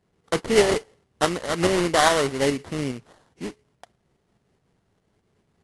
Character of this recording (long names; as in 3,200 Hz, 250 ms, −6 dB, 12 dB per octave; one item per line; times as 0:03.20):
tremolo saw up 4.8 Hz, depth 45%
aliases and images of a low sample rate 2,500 Hz, jitter 20%
AAC